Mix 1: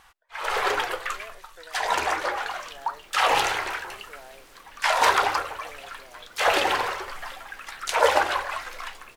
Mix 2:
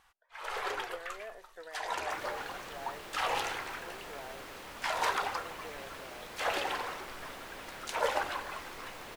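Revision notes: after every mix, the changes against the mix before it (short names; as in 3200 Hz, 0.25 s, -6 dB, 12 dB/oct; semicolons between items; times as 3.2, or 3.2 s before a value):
first sound -11.5 dB; second sound +7.5 dB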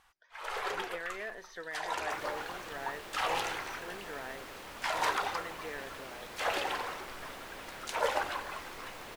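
speech: remove band-pass 680 Hz, Q 1.5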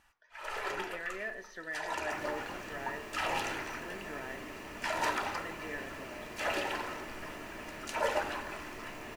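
reverb: on, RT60 0.60 s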